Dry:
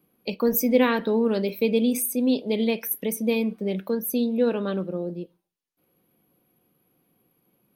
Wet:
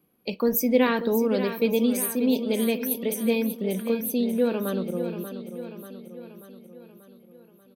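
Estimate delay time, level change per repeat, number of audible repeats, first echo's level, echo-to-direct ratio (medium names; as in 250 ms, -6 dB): 587 ms, -5.0 dB, 5, -10.0 dB, -8.5 dB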